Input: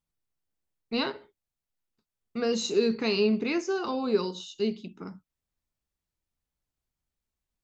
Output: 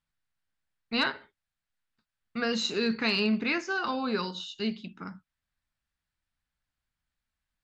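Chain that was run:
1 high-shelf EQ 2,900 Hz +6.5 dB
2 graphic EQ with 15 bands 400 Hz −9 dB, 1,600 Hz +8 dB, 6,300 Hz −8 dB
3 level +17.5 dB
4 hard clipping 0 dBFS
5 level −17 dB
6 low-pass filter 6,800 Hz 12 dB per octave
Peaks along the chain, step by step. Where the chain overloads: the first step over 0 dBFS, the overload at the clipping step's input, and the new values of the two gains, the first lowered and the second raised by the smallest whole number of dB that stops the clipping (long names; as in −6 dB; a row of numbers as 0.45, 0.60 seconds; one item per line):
−12.5, −14.0, +3.5, 0.0, −17.0, −16.5 dBFS
step 3, 3.5 dB
step 3 +13.5 dB, step 5 −13 dB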